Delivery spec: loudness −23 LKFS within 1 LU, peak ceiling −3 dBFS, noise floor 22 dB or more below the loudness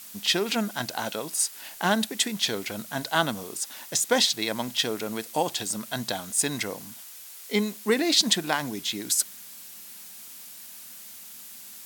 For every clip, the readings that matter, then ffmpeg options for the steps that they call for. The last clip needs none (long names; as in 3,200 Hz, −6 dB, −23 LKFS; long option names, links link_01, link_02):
background noise floor −44 dBFS; target noise floor −48 dBFS; integrated loudness −26.0 LKFS; sample peak −7.0 dBFS; target loudness −23.0 LKFS
→ -af "afftdn=noise_reduction=6:noise_floor=-44"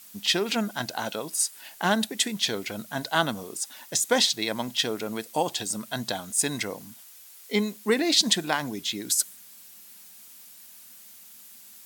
background noise floor −49 dBFS; integrated loudness −26.5 LKFS; sample peak −7.0 dBFS; target loudness −23.0 LKFS
→ -af "volume=3.5dB"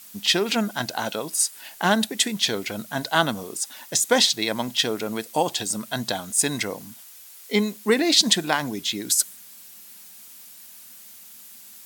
integrated loudness −23.0 LKFS; sample peak −3.5 dBFS; background noise floor −46 dBFS